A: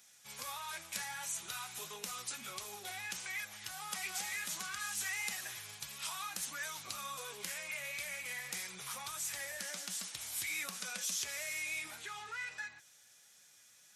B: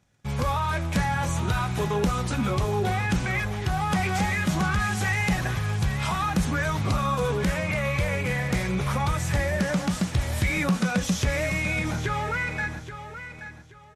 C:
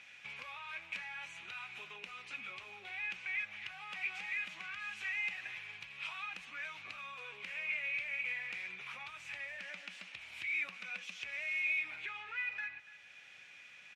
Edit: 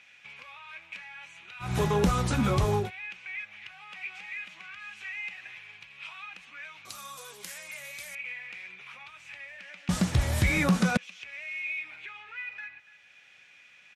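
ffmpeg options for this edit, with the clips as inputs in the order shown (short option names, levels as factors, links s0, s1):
-filter_complex "[1:a]asplit=2[s0][s1];[2:a]asplit=4[s2][s3][s4][s5];[s2]atrim=end=1.75[s6];[s0]atrim=start=1.59:end=2.91[s7];[s3]atrim=start=2.75:end=6.852[s8];[0:a]atrim=start=6.848:end=8.152[s9];[s4]atrim=start=8.148:end=9.892[s10];[s1]atrim=start=9.888:end=10.972[s11];[s5]atrim=start=10.968[s12];[s6][s7]acrossfade=d=0.16:c1=tri:c2=tri[s13];[s13][s8]acrossfade=d=0.16:c1=tri:c2=tri[s14];[s14][s9]acrossfade=d=0.004:c1=hsin:c2=hsin[s15];[s15][s10]acrossfade=d=0.004:c1=hsin:c2=hsin[s16];[s16][s11]acrossfade=d=0.004:c1=hsin:c2=hsin[s17];[s17][s12]acrossfade=d=0.004:c1=hsin:c2=hsin"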